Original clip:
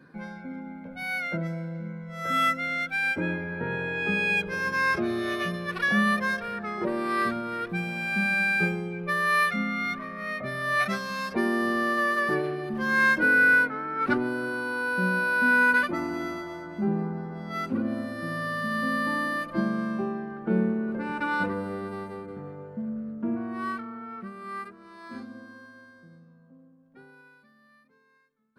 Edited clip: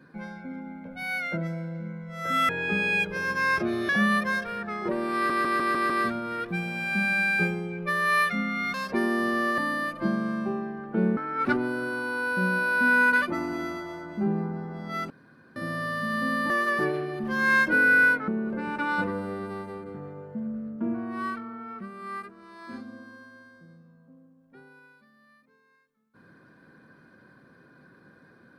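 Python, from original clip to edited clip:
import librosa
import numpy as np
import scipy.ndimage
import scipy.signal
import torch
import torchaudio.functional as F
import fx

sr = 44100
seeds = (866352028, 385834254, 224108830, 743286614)

y = fx.edit(x, sr, fx.cut(start_s=2.49, length_s=1.37),
    fx.cut(start_s=5.26, length_s=0.59),
    fx.stutter(start_s=7.11, slice_s=0.15, count=6),
    fx.cut(start_s=9.95, length_s=1.21),
    fx.swap(start_s=12.0, length_s=1.78, other_s=19.11, other_length_s=1.59),
    fx.room_tone_fill(start_s=17.71, length_s=0.46), tone=tone)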